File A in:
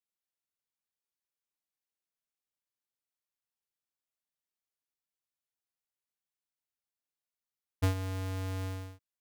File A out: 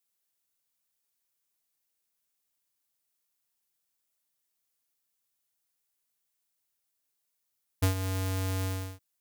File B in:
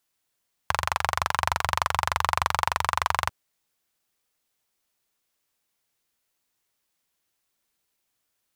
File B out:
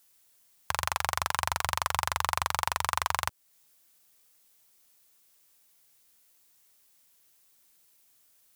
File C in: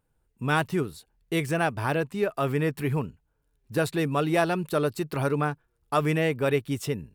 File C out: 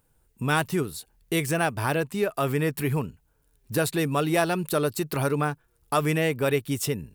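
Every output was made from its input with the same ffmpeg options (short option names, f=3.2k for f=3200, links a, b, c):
-filter_complex "[0:a]highshelf=f=5.7k:g=10,asplit=2[a][b];[b]acompressor=threshold=-35dB:ratio=6,volume=2.5dB[c];[a][c]amix=inputs=2:normalize=0,alimiter=limit=-3.5dB:level=0:latency=1:release=150,volume=-2dB"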